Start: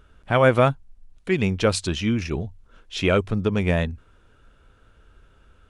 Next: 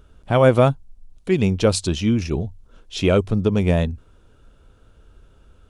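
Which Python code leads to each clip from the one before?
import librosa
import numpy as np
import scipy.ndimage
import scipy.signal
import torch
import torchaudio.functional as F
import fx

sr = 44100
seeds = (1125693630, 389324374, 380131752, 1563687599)

y = fx.peak_eq(x, sr, hz=1800.0, db=-8.5, octaves=1.5)
y = y * librosa.db_to_amplitude(4.0)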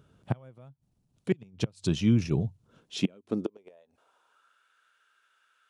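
y = fx.gate_flip(x, sr, shuts_db=-8.0, range_db=-33)
y = fx.filter_sweep_highpass(y, sr, from_hz=130.0, to_hz=1600.0, start_s=2.71, end_s=4.64, q=2.5)
y = y * librosa.db_to_amplitude(-7.0)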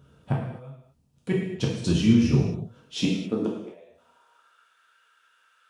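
y = fx.rev_gated(x, sr, seeds[0], gate_ms=290, shape='falling', drr_db=-4.5)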